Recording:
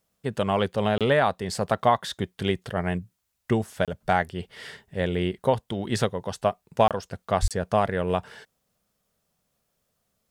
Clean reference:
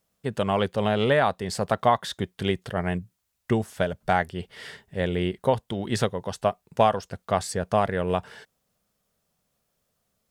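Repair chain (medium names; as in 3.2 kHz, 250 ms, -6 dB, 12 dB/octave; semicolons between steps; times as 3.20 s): de-plosive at 7.41 s; interpolate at 0.98/3.85/6.88/7.48 s, 27 ms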